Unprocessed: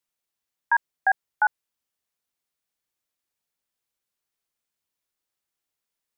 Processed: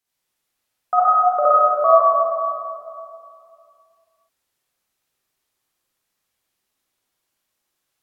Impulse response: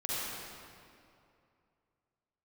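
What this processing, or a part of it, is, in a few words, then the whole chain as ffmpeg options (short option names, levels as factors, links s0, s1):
slowed and reverbed: -filter_complex "[0:a]asetrate=33957,aresample=44100[s0];[1:a]atrim=start_sample=2205[s1];[s0][s1]afir=irnorm=-1:irlink=0,volume=1.58"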